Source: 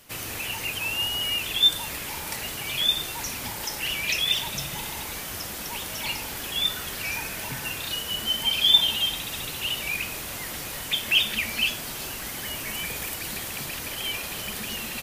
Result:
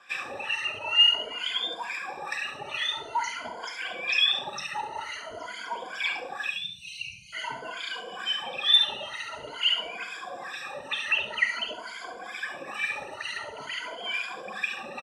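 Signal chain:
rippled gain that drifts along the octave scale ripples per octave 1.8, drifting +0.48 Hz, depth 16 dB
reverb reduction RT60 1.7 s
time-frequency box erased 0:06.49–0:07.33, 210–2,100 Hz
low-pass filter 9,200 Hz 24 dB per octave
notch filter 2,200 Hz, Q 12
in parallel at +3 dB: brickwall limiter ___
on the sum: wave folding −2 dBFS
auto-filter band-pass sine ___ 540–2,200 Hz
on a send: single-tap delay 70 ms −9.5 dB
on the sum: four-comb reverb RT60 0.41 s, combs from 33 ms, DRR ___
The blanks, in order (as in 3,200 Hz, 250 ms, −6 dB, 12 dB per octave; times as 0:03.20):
−12 dBFS, 2.2 Hz, 10.5 dB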